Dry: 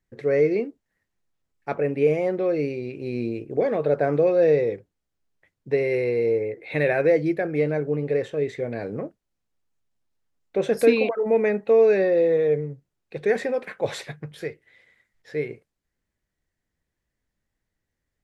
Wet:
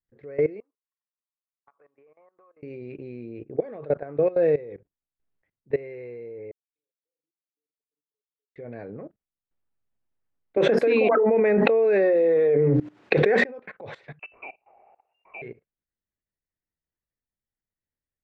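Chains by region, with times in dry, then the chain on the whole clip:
0:00.60–0:02.63: resonant band-pass 1,100 Hz, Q 9.4 + downward compressor 16 to 1, threshold −52 dBFS
0:06.51–0:08.56: spectral envelope exaggerated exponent 3 + inverse Chebyshev high-pass filter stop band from 2,100 Hz, stop band 70 dB + flutter between parallel walls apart 6.9 metres, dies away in 0.5 s
0:10.57–0:13.44: high-pass filter 230 Hz + mains-hum notches 60/120/180/240/300 Hz + envelope flattener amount 100%
0:14.19–0:15.42: voice inversion scrambler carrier 2,800 Hz + flat-topped bell 540 Hz +9.5 dB 1.2 octaves
whole clip: low-pass filter 2,400 Hz 12 dB per octave; output level in coarse steps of 19 dB

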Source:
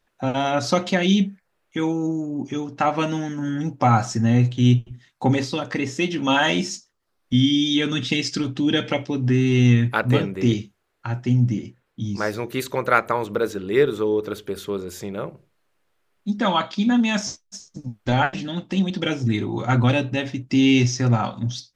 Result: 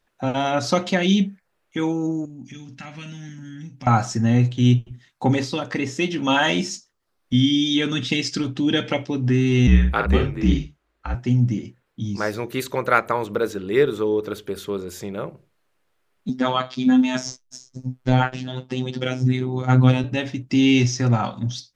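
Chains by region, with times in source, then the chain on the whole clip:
0:02.25–0:03.87: flat-topped bell 640 Hz −15 dB 2.3 octaves + downward compressor 2.5 to 1, threshold −37 dBFS + double-tracking delay 46 ms −11 dB
0:09.67–0:11.15: low-pass filter 4,000 Hz 6 dB per octave + double-tracking delay 50 ms −6.5 dB + frequency shifter −54 Hz
0:16.29–0:20.04: low-shelf EQ 480 Hz +4.5 dB + phases set to zero 128 Hz
whole clip: no processing

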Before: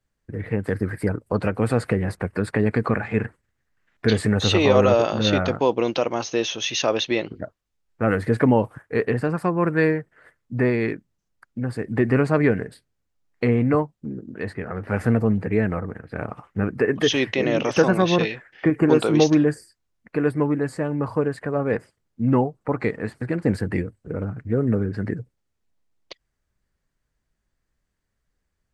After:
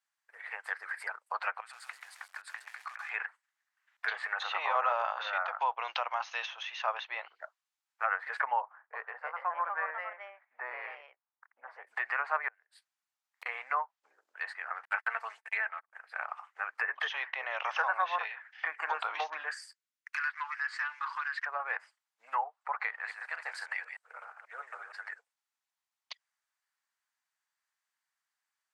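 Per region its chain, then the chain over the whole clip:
0:01.60–0:03.10: parametric band 520 Hz −13 dB 1.5 octaves + downward compressor 8 to 1, threshold −34 dBFS + feedback echo at a low word length 133 ms, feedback 35%, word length 8 bits, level −4 dB
0:08.60–0:11.87: low-pass filter 1,100 Hz + delay with pitch and tempo change per echo 334 ms, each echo +2 semitones, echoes 2, each echo −6 dB
0:12.48–0:13.46: one scale factor per block 7 bits + gate with flip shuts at −19 dBFS, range −30 dB
0:14.85–0:15.93: noise gate −25 dBFS, range −55 dB + spectral tilt +4.5 dB per octave + comb filter 4.5 ms, depth 35%
0:19.51–0:21.46: treble cut that deepens with the level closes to 2,800 Hz, closed at −18 dBFS + high-pass filter 1,300 Hz 24 dB per octave + leveller curve on the samples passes 2
0:22.87–0:25.13: delay that plays each chunk backwards 122 ms, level −7.5 dB + high-pass filter 530 Hz
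whole clip: Butterworth high-pass 800 Hz 36 dB per octave; treble cut that deepens with the level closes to 1,500 Hz, closed at −26 dBFS; dynamic equaliser 1,500 Hz, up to +3 dB, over −42 dBFS, Q 1; level −3 dB

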